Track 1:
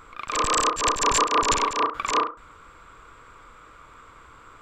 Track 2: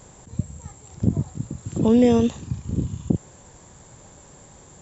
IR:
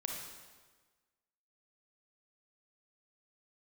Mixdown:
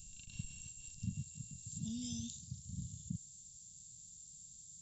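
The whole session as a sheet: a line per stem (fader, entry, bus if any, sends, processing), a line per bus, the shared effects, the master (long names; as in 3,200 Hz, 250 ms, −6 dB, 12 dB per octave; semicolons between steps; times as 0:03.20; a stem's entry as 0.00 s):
−3.0 dB, 0.00 s, no send, samples sorted by size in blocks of 16 samples; low-pass filter 2,600 Hz 24 dB per octave; downward compressor 4 to 1, threshold −31 dBFS, peak gain reduction 11 dB; automatic ducking −21 dB, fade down 1.60 s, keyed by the second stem
−11.5 dB, 0.00 s, no send, low-shelf EQ 220 Hz −9.5 dB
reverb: not used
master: inverse Chebyshev band-stop filter 340–2,200 Hz, stop band 40 dB; high-shelf EQ 2,500 Hz +9.5 dB; hollow resonant body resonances 660/2,200 Hz, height 15 dB, ringing for 50 ms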